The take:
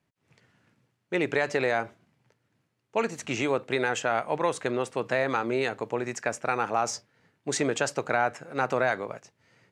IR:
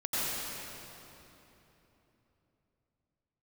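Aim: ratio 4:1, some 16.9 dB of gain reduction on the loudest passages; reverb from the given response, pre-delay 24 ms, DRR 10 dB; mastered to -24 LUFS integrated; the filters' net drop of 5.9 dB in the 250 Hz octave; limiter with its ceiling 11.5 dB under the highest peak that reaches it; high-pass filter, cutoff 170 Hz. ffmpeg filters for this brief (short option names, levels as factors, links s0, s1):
-filter_complex "[0:a]highpass=170,equalizer=f=250:t=o:g=-7.5,acompressor=threshold=0.00708:ratio=4,alimiter=level_in=4.73:limit=0.0631:level=0:latency=1,volume=0.211,asplit=2[s0][s1];[1:a]atrim=start_sample=2205,adelay=24[s2];[s1][s2]afir=irnorm=-1:irlink=0,volume=0.112[s3];[s0][s3]amix=inputs=2:normalize=0,volume=17.8"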